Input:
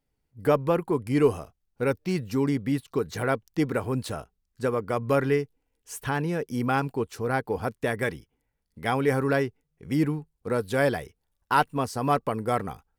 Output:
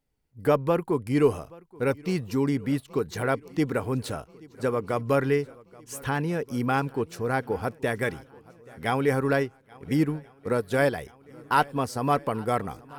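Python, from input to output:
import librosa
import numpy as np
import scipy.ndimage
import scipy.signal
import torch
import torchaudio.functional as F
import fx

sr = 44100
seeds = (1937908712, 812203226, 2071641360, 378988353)

y = fx.echo_swing(x, sr, ms=1381, ratio=1.5, feedback_pct=49, wet_db=-23.5)
y = fx.transient(y, sr, attack_db=2, sustain_db=-5, at=(9.15, 10.98))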